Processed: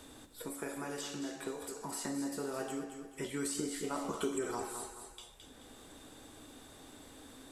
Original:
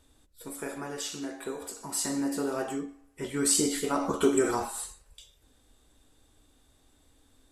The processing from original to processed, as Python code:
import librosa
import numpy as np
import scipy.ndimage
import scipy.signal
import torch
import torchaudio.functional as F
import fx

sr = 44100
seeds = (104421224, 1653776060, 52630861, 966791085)

y = fx.echo_feedback(x, sr, ms=216, feedback_pct=23, wet_db=-10.5)
y = fx.band_squash(y, sr, depth_pct=70)
y = F.gain(torch.from_numpy(y), -7.5).numpy()